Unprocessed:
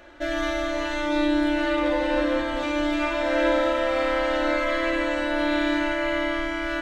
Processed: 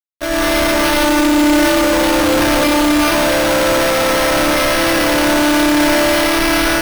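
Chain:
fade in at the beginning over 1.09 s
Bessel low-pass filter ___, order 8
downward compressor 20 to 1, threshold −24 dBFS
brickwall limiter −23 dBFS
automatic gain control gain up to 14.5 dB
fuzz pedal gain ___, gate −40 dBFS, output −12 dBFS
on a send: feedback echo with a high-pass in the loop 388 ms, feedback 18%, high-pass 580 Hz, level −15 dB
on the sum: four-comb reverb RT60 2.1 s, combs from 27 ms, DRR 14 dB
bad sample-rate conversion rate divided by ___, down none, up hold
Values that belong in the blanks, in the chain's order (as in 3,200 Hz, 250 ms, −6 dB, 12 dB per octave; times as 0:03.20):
7,500 Hz, 37 dB, 6×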